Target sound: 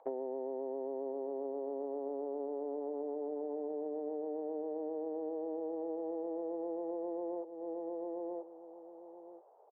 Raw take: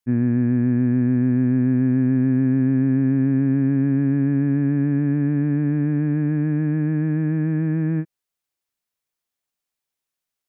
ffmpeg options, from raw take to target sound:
ffmpeg -i in.wav -filter_complex "[0:a]asetrate=47628,aresample=44100,asplit=2[link_01][link_02];[link_02]acrusher=bits=4:mix=0:aa=0.000001,volume=-11.5dB[link_03];[link_01][link_03]amix=inputs=2:normalize=0,asuperpass=centerf=610:order=8:qfactor=1.3,acompressor=mode=upward:threshold=-56dB:ratio=2.5,aecho=1:1:982|1964:0.168|0.0319,acompressor=threshold=-50dB:ratio=12,volume=14dB" out.wav

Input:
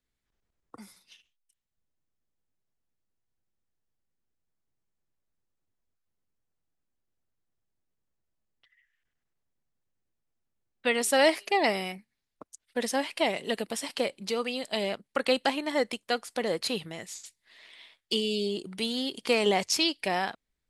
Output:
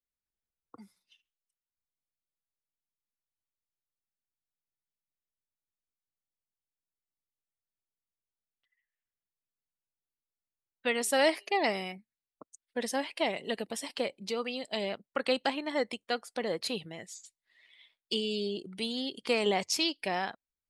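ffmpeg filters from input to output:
ffmpeg -i in.wav -af "afftdn=noise_reduction=13:noise_floor=-48,volume=-3.5dB" out.wav

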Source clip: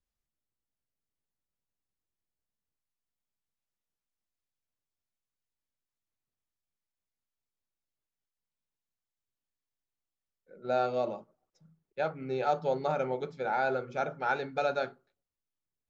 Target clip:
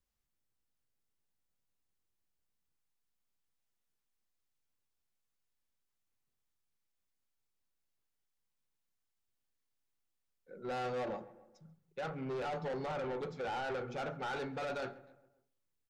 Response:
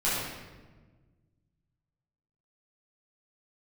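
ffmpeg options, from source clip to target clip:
-filter_complex "[0:a]bandreject=frequency=630:width=12,alimiter=level_in=1.5dB:limit=-24dB:level=0:latency=1:release=12,volume=-1.5dB,asoftclip=type=tanh:threshold=-37.5dB,asplit=2[link_01][link_02];[link_02]adelay=135,lowpass=frequency=1900:poles=1,volume=-18.5dB,asplit=2[link_03][link_04];[link_04]adelay=135,lowpass=frequency=1900:poles=1,volume=0.53,asplit=2[link_05][link_06];[link_06]adelay=135,lowpass=frequency=1900:poles=1,volume=0.53,asplit=2[link_07][link_08];[link_08]adelay=135,lowpass=frequency=1900:poles=1,volume=0.53[link_09];[link_01][link_03][link_05][link_07][link_09]amix=inputs=5:normalize=0,asplit=2[link_10][link_11];[1:a]atrim=start_sample=2205,afade=type=out:start_time=0.39:duration=0.01,atrim=end_sample=17640,lowpass=2400[link_12];[link_11][link_12]afir=irnorm=-1:irlink=0,volume=-29.5dB[link_13];[link_10][link_13]amix=inputs=2:normalize=0,volume=2dB"

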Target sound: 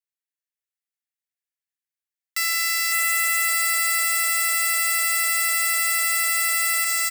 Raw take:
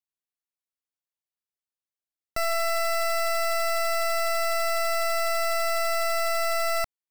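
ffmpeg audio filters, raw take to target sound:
ffmpeg -i in.wav -filter_complex "[0:a]acrossover=split=5500[link_01][link_02];[link_01]aeval=exprs='clip(val(0),-1,0.0178)':channel_layout=same[link_03];[link_02]acontrast=42[link_04];[link_03][link_04]amix=inputs=2:normalize=0,aeval=exprs='0.141*(cos(1*acos(clip(val(0)/0.141,-1,1)))-cos(1*PI/2))+0.0447*(cos(3*acos(clip(val(0)/0.141,-1,1)))-cos(3*PI/2))+0.00141*(cos(5*acos(clip(val(0)/0.141,-1,1)))-cos(5*PI/2))':channel_layout=same,highpass=frequency=1800:width_type=q:width=2.6,asplit=2[link_05][link_06];[link_06]aecho=0:1:557|1114|1671|2228|2785|3342:0.668|0.321|0.154|0.0739|0.0355|0.017[link_07];[link_05][link_07]amix=inputs=2:normalize=0,alimiter=level_in=21.5dB:limit=-1dB:release=50:level=0:latency=1,volume=-8dB" out.wav

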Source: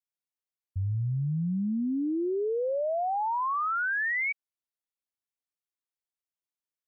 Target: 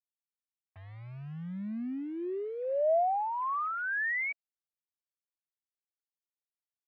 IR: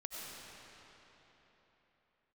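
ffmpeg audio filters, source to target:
-af "acrusher=bits=7:mix=0:aa=0.000001,highpass=300,equalizer=frequency=310:width_type=q:width=4:gain=-6,equalizer=frequency=460:width_type=q:width=4:gain=-9,equalizer=frequency=650:width_type=q:width=4:gain=6,equalizer=frequency=930:width_type=q:width=4:gain=-5,equalizer=frequency=1400:width_type=q:width=4:gain=-6,lowpass=frequency=2100:width=0.5412,lowpass=frequency=2100:width=1.3066"

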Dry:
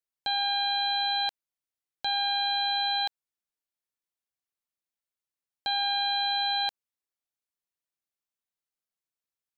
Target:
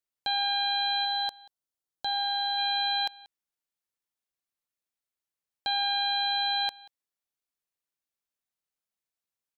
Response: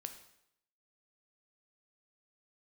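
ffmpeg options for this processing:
-filter_complex "[0:a]asplit=3[link_01][link_02][link_03];[link_01]afade=type=out:start_time=1.04:duration=0.02[link_04];[link_02]equalizer=frequency=2300:width=2.6:gain=-13,afade=type=in:start_time=1.04:duration=0.02,afade=type=out:start_time=2.57:duration=0.02[link_05];[link_03]afade=type=in:start_time=2.57:duration=0.02[link_06];[link_04][link_05][link_06]amix=inputs=3:normalize=0,asplit=2[link_07][link_08];[link_08]aecho=0:1:185:0.075[link_09];[link_07][link_09]amix=inputs=2:normalize=0"

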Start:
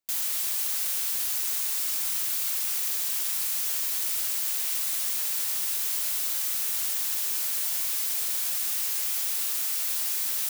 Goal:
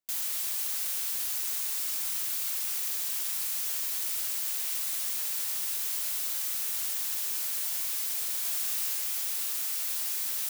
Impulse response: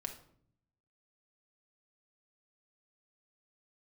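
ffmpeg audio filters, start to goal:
-filter_complex "[0:a]asettb=1/sr,asplit=3[link_01][link_02][link_03];[link_01]atrim=end=8.424[link_04];[link_02]atrim=start=8.42:end=8.95,asetpts=PTS-STARTPTS,afade=type=in:duration=0.004:curve=qsin,afade=type=out:start_time=0.526:duration=0.004:curve=qsin,asplit=2[link_05][link_06];[link_06]adelay=25,volume=-5dB[link_07];[link_05][link_07]amix=inputs=2:normalize=0,atrim=end_sample=23373[link_08];[link_03]atrim=start=8.946[link_09];[link_04][link_08]acrossfade=duration=0.004:curve1=hsin:curve2=qsin[link_10];[link_10][link_09]acrossfade=duration=0.004:curve1=qsin:curve2=hsin,volume=-3.5dB"

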